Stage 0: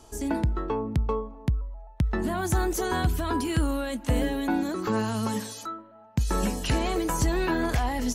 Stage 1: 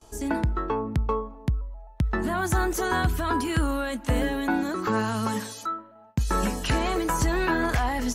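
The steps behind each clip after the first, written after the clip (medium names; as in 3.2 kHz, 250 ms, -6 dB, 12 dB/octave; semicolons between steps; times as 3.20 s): gate with hold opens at -43 dBFS; dynamic bell 1.4 kHz, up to +6 dB, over -46 dBFS, Q 1.1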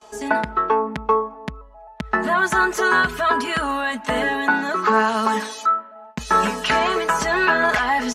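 band-pass filter 1.5 kHz, Q 0.5; comb 4.7 ms, depth 78%; trim +8.5 dB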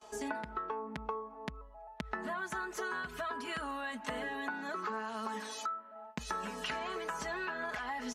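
compression 12:1, threshold -27 dBFS, peak gain reduction 15 dB; trim -8 dB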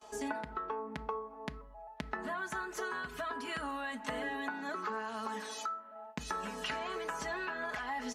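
reverberation RT60 0.60 s, pre-delay 4 ms, DRR 13.5 dB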